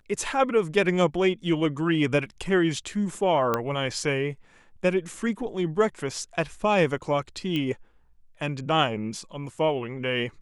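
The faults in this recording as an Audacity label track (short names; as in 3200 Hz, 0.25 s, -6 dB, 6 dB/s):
3.540000	3.540000	pop -11 dBFS
7.560000	7.560000	pop -17 dBFS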